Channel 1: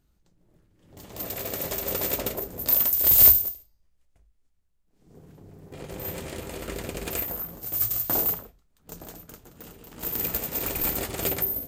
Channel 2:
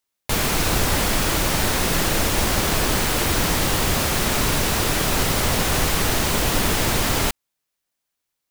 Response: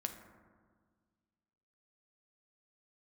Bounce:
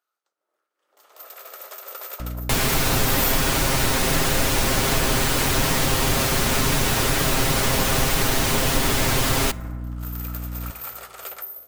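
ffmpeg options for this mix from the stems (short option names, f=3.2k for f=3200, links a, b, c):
-filter_complex "[0:a]highpass=f=500:w=0.5412,highpass=f=500:w=1.3066,equalizer=f=1.3k:w=3.6:g=13.5,bandreject=f=7.2k:w=19,volume=-10dB,asplit=2[a][b];[b]volume=-9.5dB[c];[1:a]aecho=1:1:7.5:0.64,aeval=exprs='val(0)+0.0282*(sin(2*PI*60*n/s)+sin(2*PI*2*60*n/s)/2+sin(2*PI*3*60*n/s)/3+sin(2*PI*4*60*n/s)/4+sin(2*PI*5*60*n/s)/5)':c=same,adelay=2200,volume=0dB,asplit=2[d][e];[e]volume=-7dB[f];[2:a]atrim=start_sample=2205[g];[c][f]amix=inputs=2:normalize=0[h];[h][g]afir=irnorm=-1:irlink=0[i];[a][d][i]amix=inputs=3:normalize=0,acompressor=threshold=-24dB:ratio=1.5"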